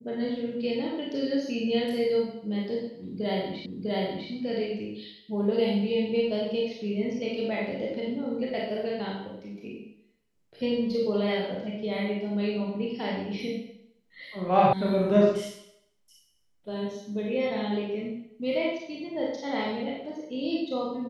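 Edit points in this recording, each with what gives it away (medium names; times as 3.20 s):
3.66 s: repeat of the last 0.65 s
14.73 s: sound stops dead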